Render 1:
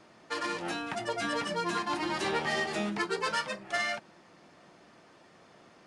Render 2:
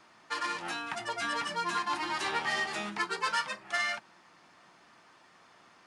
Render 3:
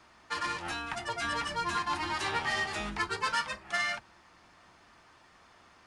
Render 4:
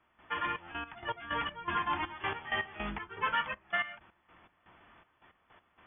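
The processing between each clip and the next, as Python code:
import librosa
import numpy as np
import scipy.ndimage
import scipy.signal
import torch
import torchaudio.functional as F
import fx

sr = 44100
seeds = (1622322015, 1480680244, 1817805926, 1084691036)

y1 = fx.low_shelf_res(x, sr, hz=740.0, db=-6.5, q=1.5)
y1 = fx.hum_notches(y1, sr, base_hz=50, count=4)
y2 = fx.octave_divider(y1, sr, octaves=2, level_db=-1.0)
y3 = fx.step_gate(y2, sr, bpm=161, pattern='..xxxx..x..x..xx', floor_db=-12.0, edge_ms=4.5)
y3 = fx.brickwall_lowpass(y3, sr, high_hz=3500.0)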